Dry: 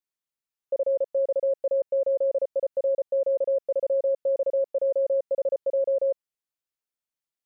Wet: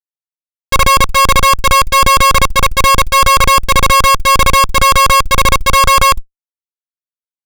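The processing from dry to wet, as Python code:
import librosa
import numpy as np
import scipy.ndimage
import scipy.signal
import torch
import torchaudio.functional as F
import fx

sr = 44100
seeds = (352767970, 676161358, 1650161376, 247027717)

y = fx.lower_of_two(x, sr, delay_ms=0.84)
y = fx.fuzz(y, sr, gain_db=60.0, gate_db=-55.0)
y = y * librosa.db_to_amplitude(6.5)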